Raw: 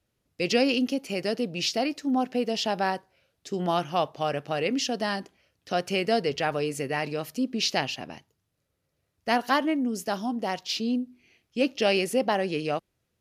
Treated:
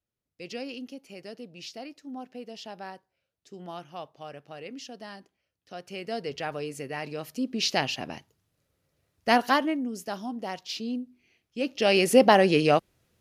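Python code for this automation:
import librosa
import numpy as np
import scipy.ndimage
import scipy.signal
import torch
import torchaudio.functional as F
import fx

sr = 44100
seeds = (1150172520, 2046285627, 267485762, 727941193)

y = fx.gain(x, sr, db=fx.line((5.77, -14.0), (6.34, -6.0), (6.96, -6.0), (8.1, 3.0), (9.39, 3.0), (9.9, -5.0), (11.62, -5.0), (12.17, 7.5)))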